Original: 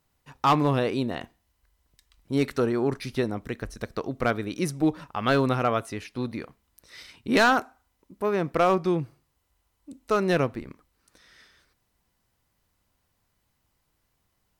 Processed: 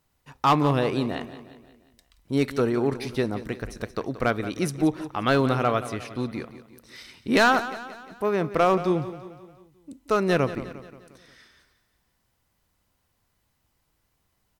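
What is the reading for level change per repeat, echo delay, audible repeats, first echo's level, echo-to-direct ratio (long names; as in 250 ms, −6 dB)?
−6.0 dB, 177 ms, 4, −14.0 dB, −12.5 dB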